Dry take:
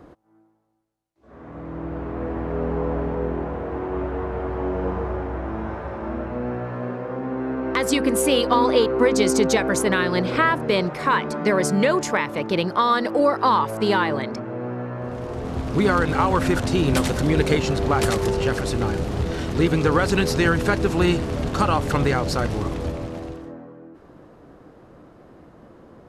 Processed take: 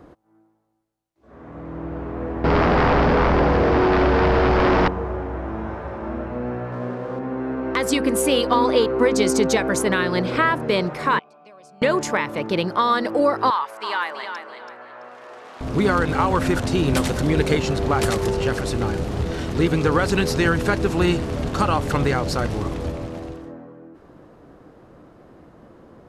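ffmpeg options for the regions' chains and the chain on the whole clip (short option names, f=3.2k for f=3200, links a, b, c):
-filter_complex "[0:a]asettb=1/sr,asplit=3[a][b][c];[a]atrim=end=2.444[d];[b]atrim=start=2.44:end=4.88,asetpts=PTS-STARTPTS,afade=t=in:d=0.004:c=qsin,afade=t=out:st=2.436:d=0.004:c=qsin,lowpass=f=7.8k:w=0.5412,lowpass=f=7.8k:w=1.3066,aeval=exprs='0.211*sin(PI/2*3.55*val(0)/0.211)':c=same,equalizer=f=5k:w=1.9:g=15[e];[c]atrim=start=4.876[f];[d][e]acrossfade=d=0.004:c1=hsin:c2=qsin[g];[g][f]acrossfade=d=0.004:c1=qsin:c2=hsin,asettb=1/sr,asplit=3[h][i][j];[h]atrim=end=6.724[k];[i]atrim=start=6.72:end=7.19,asetpts=PTS-STARTPTS,afade=t=in:d=0.004:c=qsin,afade=t=out:st=0.466:d=0.004:c=qsin,aeval=exprs='val(0)+0.5*0.00841*sgn(val(0))':c=same,highpass=44,adynamicsmooth=sensitivity=4:basefreq=2.9k[l];[j]atrim=start=7.186[m];[k][l]acrossfade=d=0.004:c1=hsin:c2=qsin[n];[n][m]acrossfade=d=0.004:c1=qsin:c2=hsin,asettb=1/sr,asplit=3[o][p][q];[o]atrim=end=11.194[r];[p]atrim=start=11.19:end=11.82,asetpts=PTS-STARTPTS,afade=t=in:d=0.004:c=qsin,afade=t=out:st=0.626:d=0.004:c=qsin,asplit=3[s][t][u];[s]bandpass=f=730:t=q:w=8,volume=0dB[v];[t]bandpass=f=1.09k:t=q:w=8,volume=-6dB[w];[u]bandpass=f=2.44k:t=q:w=8,volume=-9dB[x];[v][w][x]amix=inputs=3:normalize=0,highshelf=f=9.1k:g=4.5,acrossover=split=160|3000[y][z][aa];[z]acompressor=threshold=-58dB:ratio=2:attack=3.2:release=140:knee=2.83:detection=peak[ab];[y][ab][aa]amix=inputs=3:normalize=0[ac];[q]atrim=start=11.816[ad];[r][ac]acrossfade=d=0.004:c1=hsin:c2=qsin[ae];[ae][ad]acrossfade=d=0.004:c1=qsin:c2=hsin,asettb=1/sr,asplit=3[af][ag][ah];[af]atrim=end=13.504[ai];[ag]atrim=start=13.5:end=15.61,asetpts=PTS-STARTPTS,afade=t=in:d=0.004:c=qsin,afade=t=out:st=2.106:d=0.004:c=qsin,highpass=980,highshelf=f=5.7k:g=-10,aecho=1:1:332|664|996:0.398|0.107|0.029,atrim=end_sample=93051[aj];[ah]atrim=start=15.606[ak];[ai][aj]acrossfade=d=0.004:c1=hsin:c2=qsin[al];[al][ak]acrossfade=d=0.004:c1=qsin:c2=hsin"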